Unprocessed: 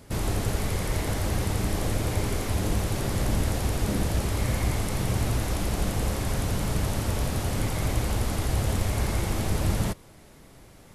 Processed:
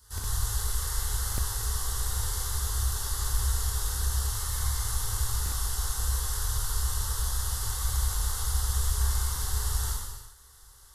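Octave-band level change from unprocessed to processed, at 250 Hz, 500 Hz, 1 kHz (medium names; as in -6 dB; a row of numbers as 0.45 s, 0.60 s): -23.0 dB, -17.0 dB, -5.0 dB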